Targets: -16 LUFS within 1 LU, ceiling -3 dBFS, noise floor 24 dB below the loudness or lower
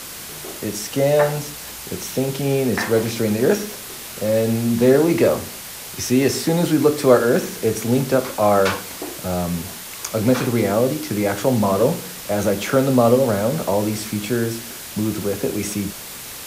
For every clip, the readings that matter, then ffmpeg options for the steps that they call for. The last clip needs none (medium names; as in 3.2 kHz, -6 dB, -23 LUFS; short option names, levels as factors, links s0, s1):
noise floor -34 dBFS; noise floor target -44 dBFS; loudness -20.0 LUFS; peak level -1.5 dBFS; loudness target -16.0 LUFS
-> -af "afftdn=nr=10:nf=-34"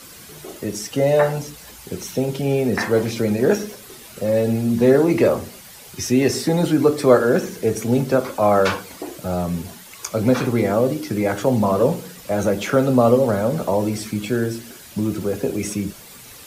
noise floor -42 dBFS; noise floor target -44 dBFS
-> -af "afftdn=nr=6:nf=-42"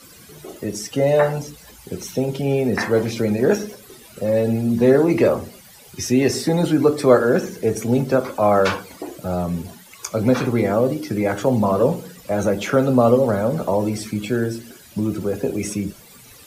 noise floor -45 dBFS; loudness -20.0 LUFS; peak level -2.0 dBFS; loudness target -16.0 LUFS
-> -af "volume=1.58,alimiter=limit=0.708:level=0:latency=1"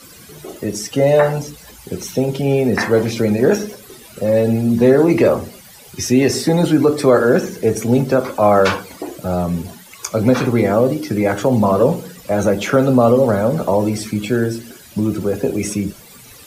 loudness -16.5 LUFS; peak level -3.0 dBFS; noise floor -41 dBFS